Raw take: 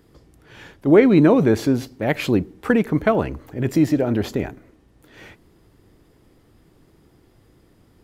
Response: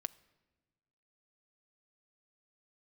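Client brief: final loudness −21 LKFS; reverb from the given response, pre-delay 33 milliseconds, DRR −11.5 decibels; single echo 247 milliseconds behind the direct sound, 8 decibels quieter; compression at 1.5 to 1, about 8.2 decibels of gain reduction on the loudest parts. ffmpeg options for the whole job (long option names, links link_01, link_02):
-filter_complex "[0:a]acompressor=threshold=-32dB:ratio=1.5,aecho=1:1:247:0.398,asplit=2[link_01][link_02];[1:a]atrim=start_sample=2205,adelay=33[link_03];[link_02][link_03]afir=irnorm=-1:irlink=0,volume=13.5dB[link_04];[link_01][link_04]amix=inputs=2:normalize=0,volume=-7.5dB"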